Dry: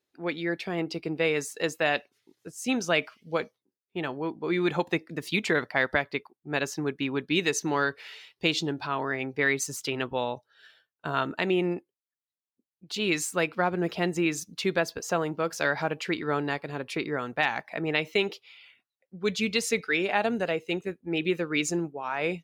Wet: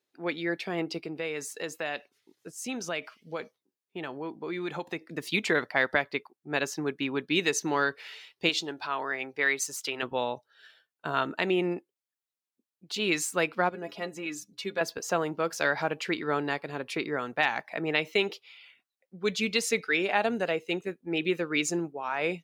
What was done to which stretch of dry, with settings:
0.98–5.02 s: compression 2:1, threshold -34 dBFS
8.49–10.03 s: peaking EQ 140 Hz -11 dB 2.6 oct
13.69–14.81 s: inharmonic resonator 61 Hz, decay 0.23 s, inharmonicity 0.03
whole clip: high-pass 190 Hz 6 dB/octave

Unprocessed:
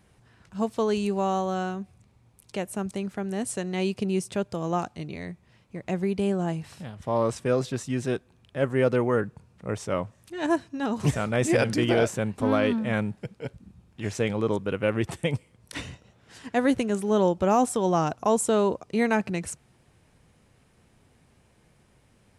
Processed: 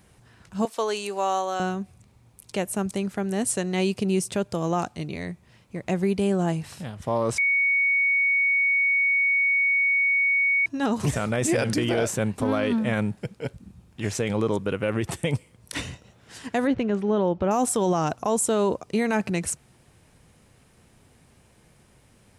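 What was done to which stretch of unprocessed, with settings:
0.65–1.60 s: high-pass 530 Hz
7.38–10.66 s: bleep 2.23 kHz -22.5 dBFS
16.67–17.51 s: distance through air 250 m
whole clip: treble shelf 6.5 kHz +6 dB; peak limiter -18 dBFS; trim +3.5 dB

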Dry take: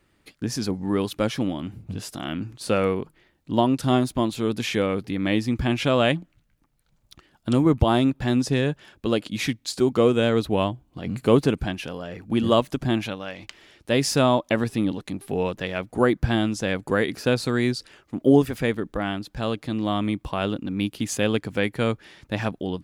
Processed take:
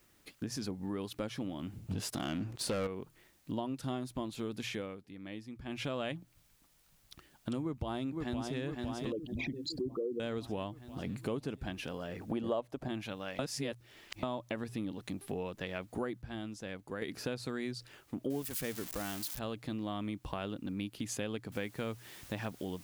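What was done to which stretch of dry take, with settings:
1.91–2.87 s: waveshaping leveller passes 3
4.61–6.01 s: dip -17 dB, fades 0.36 s
7.61–8.59 s: echo throw 510 ms, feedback 60%, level -6 dB
9.12–10.20 s: resonances exaggerated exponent 3
12.21–12.88 s: peaking EQ 630 Hz +13 dB 1.9 oct
13.39–14.23 s: reverse
15.86–17.38 s: dip -12 dB, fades 0.36 s logarithmic
18.30–19.39 s: zero-crossing glitches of -16.5 dBFS
21.52 s: noise floor step -65 dB -49 dB
whole clip: hum notches 60/120 Hz; compression 4:1, threshold -31 dBFS; trim -5 dB

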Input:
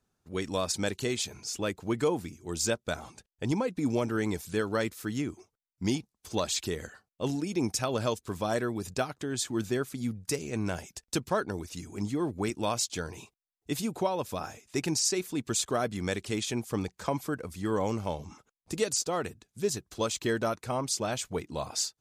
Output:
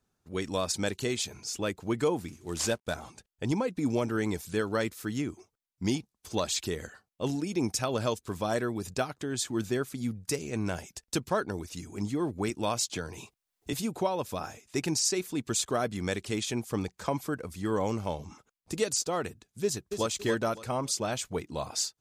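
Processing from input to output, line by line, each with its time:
2.28–2.94 s: CVSD coder 64 kbps
12.89–13.73 s: three bands compressed up and down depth 70%
19.63–20.07 s: echo throw 280 ms, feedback 30%, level -7.5 dB

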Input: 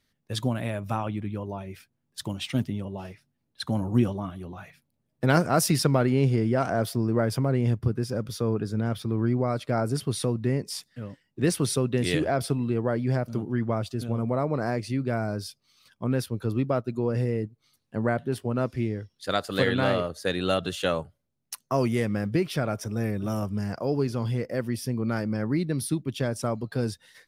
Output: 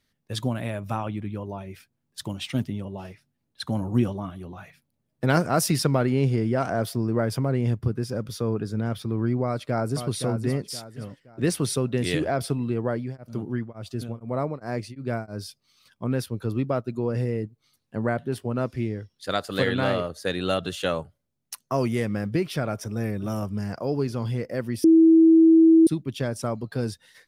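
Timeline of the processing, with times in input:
9.44–10.05 s: echo throw 520 ms, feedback 35%, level -7.5 dB
12.74–15.47 s: tremolo of two beating tones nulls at 1.4 Hz -> 3.6 Hz
24.84–25.87 s: bleep 325 Hz -11 dBFS

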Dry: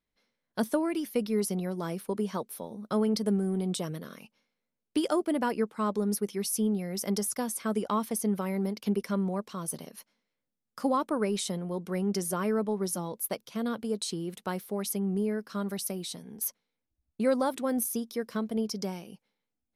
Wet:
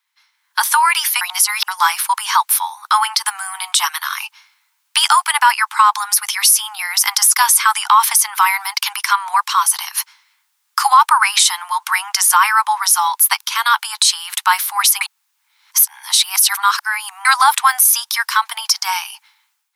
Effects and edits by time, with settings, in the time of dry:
1.21–1.68 s: reverse
15.01–17.25 s: reverse
whole clip: steep high-pass 850 Hz 96 dB/octave; level rider gain up to 11.5 dB; loudness maximiser +17.5 dB; trim -1 dB

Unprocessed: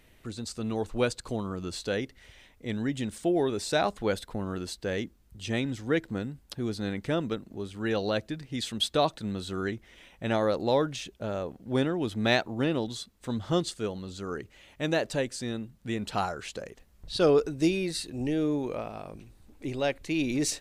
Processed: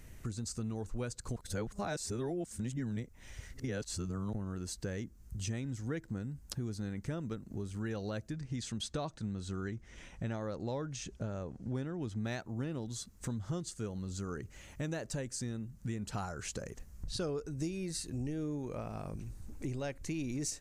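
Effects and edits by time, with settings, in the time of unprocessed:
1.36–4.33 s: reverse
8.33–12.25 s: low-pass 7.5 kHz
whole clip: FFT filter 120 Hz 0 dB, 180 Hz -3 dB, 300 Hz -8 dB, 700 Hz -11 dB, 1.5 kHz -8 dB, 3.6 kHz -15 dB, 6.4 kHz -1 dB, 11 kHz -6 dB; compression 4:1, threshold -47 dBFS; trim +10 dB

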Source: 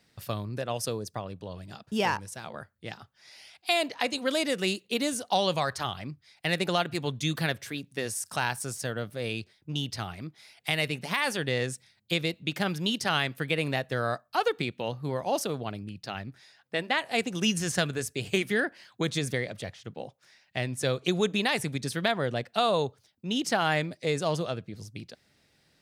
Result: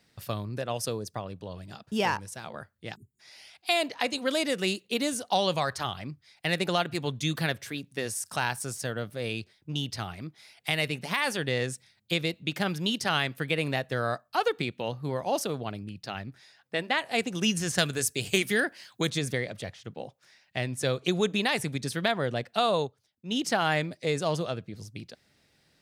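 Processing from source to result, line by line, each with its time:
2.95–3.20 s: spectral selection erased 420–6700 Hz
17.78–19.10 s: treble shelf 4 kHz +10 dB
22.66–23.32 s: upward expansion, over -41 dBFS

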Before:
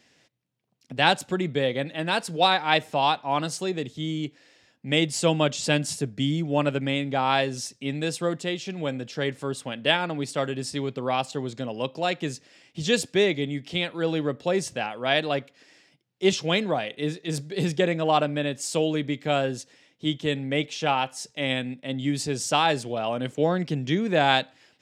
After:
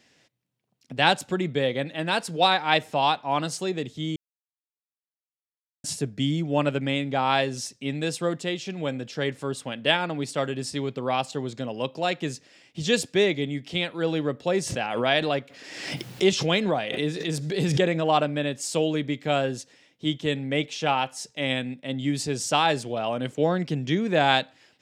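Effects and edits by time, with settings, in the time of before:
4.16–5.84 s: mute
14.63–18.05 s: swell ahead of each attack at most 45 dB/s

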